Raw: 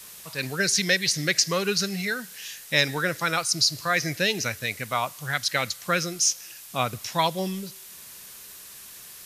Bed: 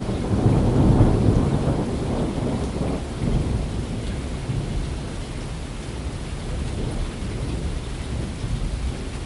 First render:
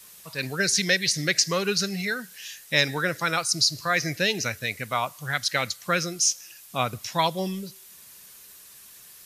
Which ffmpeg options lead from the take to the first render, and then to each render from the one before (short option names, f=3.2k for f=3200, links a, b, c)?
-af "afftdn=nr=6:nf=-45"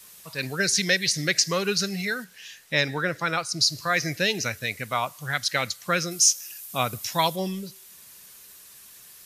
-filter_complex "[0:a]asettb=1/sr,asplit=3[a][b][c];[a]atrim=end=2.244[d];[b]atrim=start=2.24:end=3.61,asetpts=PTS-STARTPTS,afade=t=in:d=0.004:c=qsin,afade=t=out:st=1.366:d=0.004:c=qsin,highshelf=f=5.3k:g=-10.5[e];[c]atrim=start=3.606[f];[d][e]acrossfade=d=0.004:c1=hsin:c2=qsin[g];[g][f]acrossfade=d=0.004:c1=qsin:c2=hsin,asettb=1/sr,asplit=3[h][i][j];[h]atrim=end=6.114[k];[i]atrim=start=6.11:end=7.36,asetpts=PTS-STARTPTS,afade=t=in:d=0.004:c=qsin,afade=t=out:st=1.246:d=0.004:c=qsin,highshelf=f=8.4k:g=11.5[l];[j]atrim=start=7.356[m];[k][l]acrossfade=d=0.004:c1=hsin:c2=qsin[n];[n][m]acrossfade=d=0.004:c1=qsin:c2=hsin"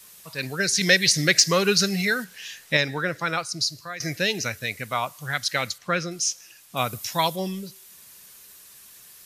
-filter_complex "[0:a]asettb=1/sr,asplit=3[a][b][c];[a]atrim=end=0.814[d];[b]atrim=start=0.81:end=2.77,asetpts=PTS-STARTPTS,afade=t=in:d=0.004:c=qsin,afade=t=out:st=1.956:d=0.004:c=qsin,acontrast=23[e];[c]atrim=start=2.766[f];[d][e]acrossfade=d=0.004:c1=hsin:c2=qsin[g];[g][f]acrossfade=d=0.004:c1=qsin:c2=hsin,asettb=1/sr,asplit=3[h][i][j];[h]atrim=end=5.784[k];[i]atrim=start=5.78:end=6.77,asetpts=PTS-STARTPTS,afade=t=in:d=0.004:c=qsin,afade=t=out:st=0.986:d=0.004:c=qsin,aemphasis=mode=reproduction:type=50fm[l];[j]atrim=start=6.766[m];[k][l]acrossfade=d=0.004:c1=hsin:c2=qsin[n];[n][m]acrossfade=d=0.004:c1=qsin:c2=hsin,asplit=2[o][p];[o]atrim=end=4,asetpts=PTS-STARTPTS,afade=t=out:st=3.4:d=0.6:silence=0.16788[q];[p]atrim=start=4,asetpts=PTS-STARTPTS,afade=t=in:d=0.004:c=hsin:silence=0.16788[r];[q][r]concat=n=2:v=0:a=1"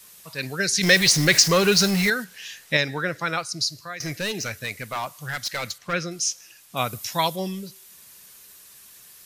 -filter_complex "[0:a]asettb=1/sr,asplit=3[a][b][c];[a]atrim=end=0.834[d];[b]atrim=start=0.83:end=2.1,asetpts=PTS-STARTPTS,afade=t=in:d=0.004:c=qsin,afade=t=out:st=1.266:d=0.004:c=qsin,aeval=exprs='val(0)+0.5*0.0708*sgn(val(0))':c=same[e];[c]atrim=start=2.096[f];[d][e]acrossfade=d=0.004:c1=hsin:c2=qsin[g];[g][f]acrossfade=d=0.004:c1=qsin:c2=hsin,asplit=3[h][i][j];[h]afade=t=out:st=3.92:d=0.02[k];[i]asoftclip=type=hard:threshold=-23.5dB,afade=t=in:st=3.92:d=0.02,afade=t=out:st=5.92:d=0.02[l];[j]afade=t=in:st=5.92:d=0.02[m];[k][l][m]amix=inputs=3:normalize=0"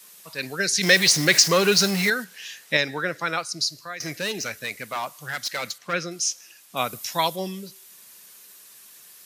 -af "highpass=190"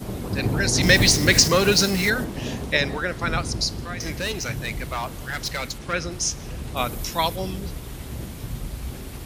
-filter_complex "[1:a]volume=-6dB[a];[0:a][a]amix=inputs=2:normalize=0"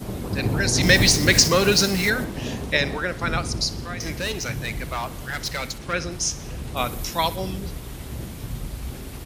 -af "aecho=1:1:63|126|189|252:0.112|0.0595|0.0315|0.0167"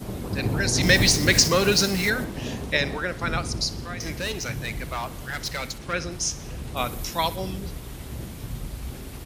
-af "volume=-2dB"